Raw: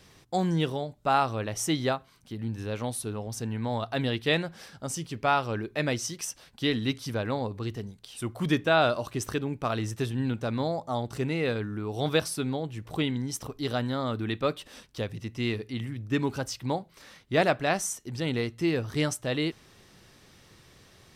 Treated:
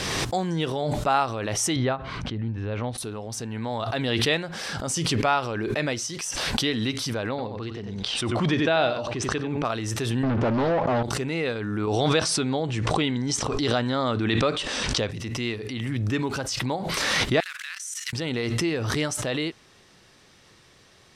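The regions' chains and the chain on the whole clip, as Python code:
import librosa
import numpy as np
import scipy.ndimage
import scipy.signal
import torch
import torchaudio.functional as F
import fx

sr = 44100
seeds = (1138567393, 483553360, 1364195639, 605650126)

y = fx.chain(x, sr, fx.lowpass(hz=2700.0, slope=12),
    fx.peak_eq(hz=63.0, db=11.0, octaves=2.1), at=(1.76, 2.98))
y = fx.chain(y, sr, fx.lowpass(hz=4600.0, slope=12),
    fx.dynamic_eq(hz=1200.0, q=1.9, threshold_db=-39.0, ratio=4.0, max_db=-6),
    fx.echo_single(ms=91, db=-9.5), at=(7.29, 9.65))
y = fx.chain(y, sr, fx.leveller(passes=5),
    fx.spacing_loss(db_at_10k=33),
    fx.doppler_dist(depth_ms=0.39), at=(10.23, 11.03))
y = fx.chain(y, sr, fx.lowpass(hz=8600.0, slope=24),
    fx.env_flatten(amount_pct=50), at=(11.87, 15.11))
y = fx.chain(y, sr, fx.block_float(bits=5),
    fx.cheby2_highpass(hz=730.0, order=4, stop_db=40),
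    fx.level_steps(step_db=19), at=(17.4, 18.13))
y = scipy.signal.sosfilt(scipy.signal.butter(2, 9600.0, 'lowpass', fs=sr, output='sos'), y)
y = fx.low_shelf(y, sr, hz=250.0, db=-6.5)
y = fx.pre_swell(y, sr, db_per_s=20.0)
y = y * 10.0 ** (2.0 / 20.0)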